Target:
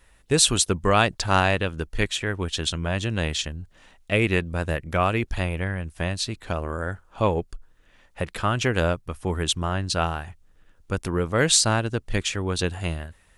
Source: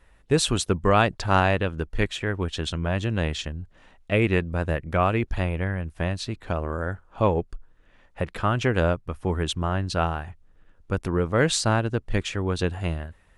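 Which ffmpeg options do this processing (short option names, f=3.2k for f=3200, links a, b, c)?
-af "highshelf=f=3.3k:g=11.5,volume=-1dB"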